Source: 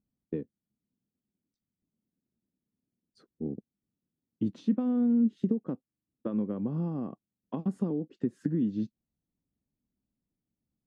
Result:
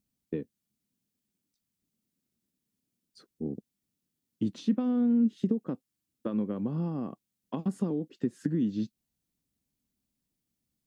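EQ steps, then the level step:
high-shelf EQ 2,100 Hz +11 dB
0.0 dB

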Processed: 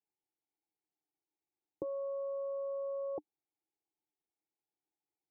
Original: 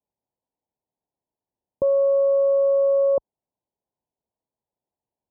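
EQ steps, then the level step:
formant filter u
phaser with its sweep stopped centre 950 Hz, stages 6
+12.0 dB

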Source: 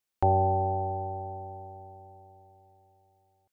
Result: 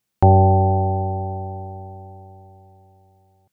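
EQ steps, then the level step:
parametric band 150 Hz +13 dB 1.6 octaves
+7.0 dB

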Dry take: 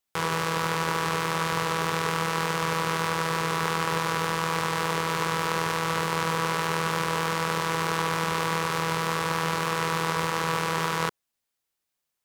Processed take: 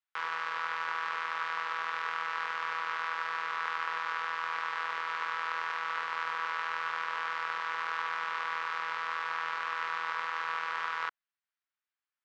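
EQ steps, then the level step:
resonant band-pass 1,400 Hz, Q 1.5
high-frequency loss of the air 160 metres
spectral tilt +4 dB per octave
−4.0 dB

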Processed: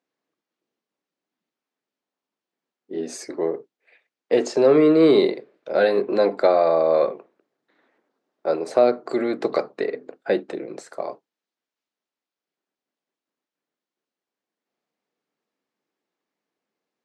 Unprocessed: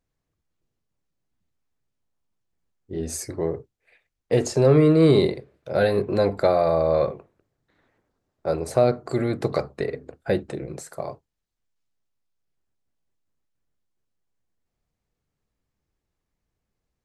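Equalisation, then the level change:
high-pass filter 240 Hz 24 dB per octave
low-pass filter 5,100 Hz 12 dB per octave
+2.5 dB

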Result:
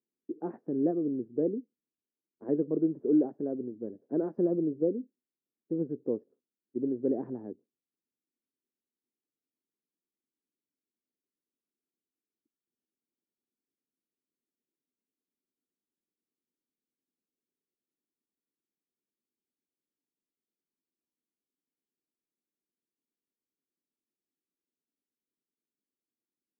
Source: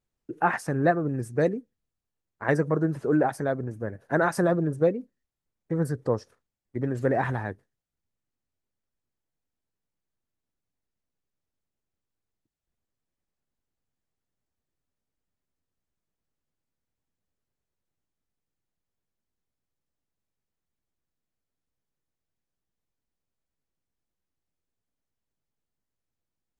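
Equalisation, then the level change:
flat-topped band-pass 310 Hz, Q 1.5
0.0 dB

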